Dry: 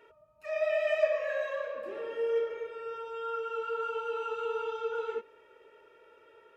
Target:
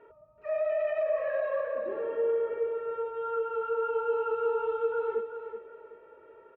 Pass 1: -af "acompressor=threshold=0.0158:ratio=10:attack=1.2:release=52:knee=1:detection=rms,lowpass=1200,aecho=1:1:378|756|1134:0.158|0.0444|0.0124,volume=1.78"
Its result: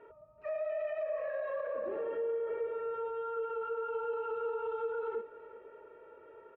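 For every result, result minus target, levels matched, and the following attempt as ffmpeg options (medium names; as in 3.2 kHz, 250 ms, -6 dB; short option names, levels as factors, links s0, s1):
compression: peak gain reduction +7 dB; echo-to-direct -7 dB
-af "acompressor=threshold=0.0376:ratio=10:attack=1.2:release=52:knee=1:detection=rms,lowpass=1200,aecho=1:1:378|756|1134:0.158|0.0444|0.0124,volume=1.78"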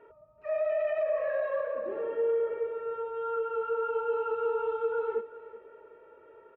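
echo-to-direct -7 dB
-af "acompressor=threshold=0.0376:ratio=10:attack=1.2:release=52:knee=1:detection=rms,lowpass=1200,aecho=1:1:378|756|1134:0.355|0.0993|0.0278,volume=1.78"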